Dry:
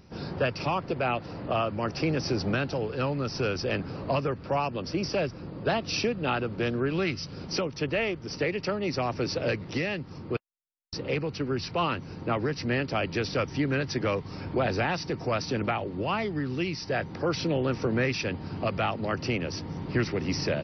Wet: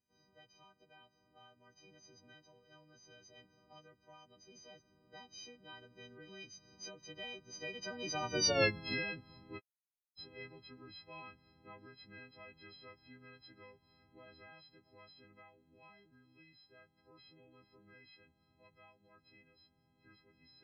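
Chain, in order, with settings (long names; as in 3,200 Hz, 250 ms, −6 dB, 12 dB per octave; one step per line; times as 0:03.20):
every partial snapped to a pitch grid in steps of 4 semitones
source passing by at 0:08.56, 32 m/s, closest 5.5 metres
level −4 dB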